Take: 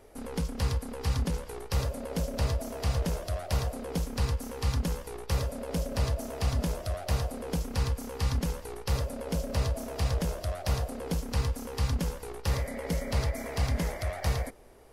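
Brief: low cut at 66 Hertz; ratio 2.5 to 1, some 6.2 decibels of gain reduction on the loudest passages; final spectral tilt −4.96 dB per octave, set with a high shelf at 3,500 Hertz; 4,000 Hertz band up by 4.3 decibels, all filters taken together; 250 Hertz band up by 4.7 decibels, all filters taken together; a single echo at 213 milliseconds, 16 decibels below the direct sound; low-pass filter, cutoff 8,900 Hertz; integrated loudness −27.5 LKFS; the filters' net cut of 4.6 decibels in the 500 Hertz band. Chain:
high-pass filter 66 Hz
low-pass filter 8,900 Hz
parametric band 250 Hz +8 dB
parametric band 500 Hz −7.5 dB
high-shelf EQ 3,500 Hz +3 dB
parametric band 4,000 Hz +3.5 dB
downward compressor 2.5 to 1, threshold −33 dBFS
single-tap delay 213 ms −16 dB
level +9 dB

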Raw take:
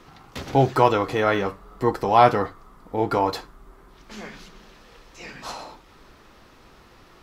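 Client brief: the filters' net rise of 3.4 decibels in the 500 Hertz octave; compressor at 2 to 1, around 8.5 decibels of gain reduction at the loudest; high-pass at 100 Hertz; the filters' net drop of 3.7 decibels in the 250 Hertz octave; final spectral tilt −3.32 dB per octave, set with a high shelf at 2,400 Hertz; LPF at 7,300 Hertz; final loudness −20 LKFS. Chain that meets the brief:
high-pass filter 100 Hz
low-pass filter 7,300 Hz
parametric band 250 Hz −8.5 dB
parametric band 500 Hz +6 dB
high-shelf EQ 2,400 Hz +4.5 dB
downward compressor 2 to 1, threshold −23 dBFS
level +6.5 dB

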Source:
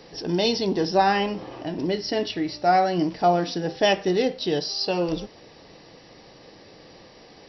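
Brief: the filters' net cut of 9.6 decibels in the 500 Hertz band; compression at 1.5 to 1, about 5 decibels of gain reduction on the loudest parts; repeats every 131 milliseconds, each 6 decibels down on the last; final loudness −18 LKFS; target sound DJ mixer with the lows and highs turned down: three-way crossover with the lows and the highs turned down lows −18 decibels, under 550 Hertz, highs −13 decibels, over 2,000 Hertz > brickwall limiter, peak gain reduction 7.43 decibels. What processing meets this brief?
parametric band 500 Hz −5.5 dB
downward compressor 1.5 to 1, threshold −31 dBFS
three-way crossover with the lows and the highs turned down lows −18 dB, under 550 Hz, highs −13 dB, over 2,000 Hz
repeating echo 131 ms, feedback 50%, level −6 dB
level +19 dB
brickwall limiter −6.5 dBFS

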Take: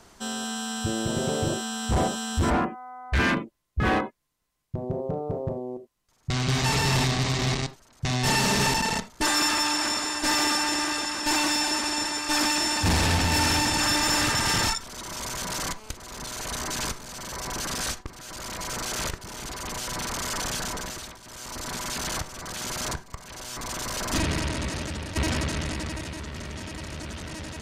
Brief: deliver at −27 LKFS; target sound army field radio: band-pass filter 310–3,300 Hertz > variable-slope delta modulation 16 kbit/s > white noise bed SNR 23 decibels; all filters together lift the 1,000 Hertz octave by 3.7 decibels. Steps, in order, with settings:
band-pass filter 310–3,300 Hz
parametric band 1,000 Hz +4.5 dB
variable-slope delta modulation 16 kbit/s
white noise bed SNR 23 dB
level +3.5 dB

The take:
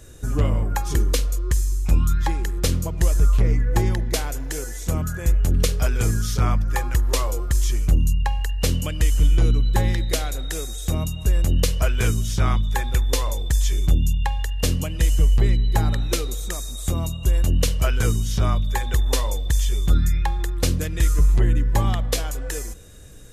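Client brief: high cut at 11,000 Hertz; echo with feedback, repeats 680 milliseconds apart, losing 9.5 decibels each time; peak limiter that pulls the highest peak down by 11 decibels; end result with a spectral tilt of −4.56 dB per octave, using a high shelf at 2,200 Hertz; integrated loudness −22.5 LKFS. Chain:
low-pass filter 11,000 Hz
high-shelf EQ 2,200 Hz +6 dB
brickwall limiter −15.5 dBFS
repeating echo 680 ms, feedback 33%, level −9.5 dB
level +2.5 dB

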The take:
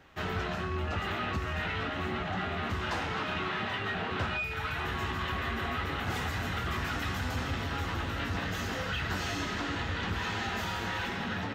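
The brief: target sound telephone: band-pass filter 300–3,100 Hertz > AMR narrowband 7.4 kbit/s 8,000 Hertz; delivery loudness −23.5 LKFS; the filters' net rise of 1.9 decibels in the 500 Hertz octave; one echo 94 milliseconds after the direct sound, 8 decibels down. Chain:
band-pass filter 300–3,100 Hz
parametric band 500 Hz +3.5 dB
single-tap delay 94 ms −8 dB
level +13.5 dB
AMR narrowband 7.4 kbit/s 8,000 Hz

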